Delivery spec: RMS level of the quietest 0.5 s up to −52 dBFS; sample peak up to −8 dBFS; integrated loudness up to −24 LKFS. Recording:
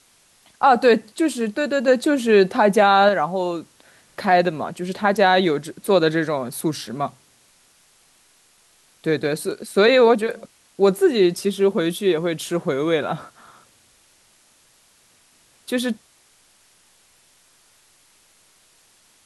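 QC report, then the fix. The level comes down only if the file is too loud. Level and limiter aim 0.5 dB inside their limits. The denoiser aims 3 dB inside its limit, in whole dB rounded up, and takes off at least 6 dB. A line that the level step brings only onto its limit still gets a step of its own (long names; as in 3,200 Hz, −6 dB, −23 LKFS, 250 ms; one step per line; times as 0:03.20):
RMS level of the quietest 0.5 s −57 dBFS: in spec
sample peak −5.0 dBFS: out of spec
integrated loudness −19.5 LKFS: out of spec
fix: level −5 dB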